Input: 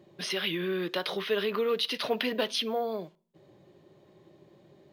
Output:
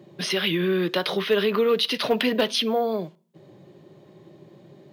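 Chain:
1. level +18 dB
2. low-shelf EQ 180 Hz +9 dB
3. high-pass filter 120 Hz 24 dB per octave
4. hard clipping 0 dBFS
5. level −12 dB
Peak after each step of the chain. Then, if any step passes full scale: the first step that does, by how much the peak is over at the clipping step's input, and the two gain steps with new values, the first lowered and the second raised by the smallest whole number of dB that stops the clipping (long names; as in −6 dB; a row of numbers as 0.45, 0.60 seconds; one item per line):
+5.0, +5.5, +5.0, 0.0, −12.0 dBFS
step 1, 5.0 dB
step 1 +13 dB, step 5 −7 dB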